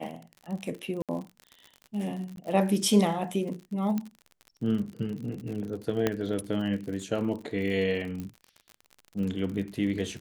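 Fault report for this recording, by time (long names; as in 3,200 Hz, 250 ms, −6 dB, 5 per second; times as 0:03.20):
surface crackle 58 per second −36 dBFS
0:01.02–0:01.09: drop-out 67 ms
0:02.36–0:02.37: drop-out 12 ms
0:03.98: click −18 dBFS
0:06.07: click −11 dBFS
0:08.20: click −24 dBFS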